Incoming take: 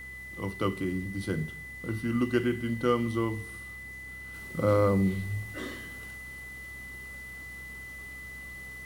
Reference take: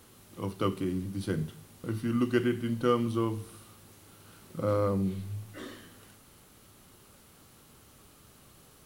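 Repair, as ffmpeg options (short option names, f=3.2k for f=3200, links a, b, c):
-af "bandreject=f=64.8:t=h:w=4,bandreject=f=129.6:t=h:w=4,bandreject=f=194.4:t=h:w=4,bandreject=f=259.2:t=h:w=4,bandreject=f=2k:w=30,asetnsamples=n=441:p=0,asendcmd='4.34 volume volume -4dB',volume=0dB"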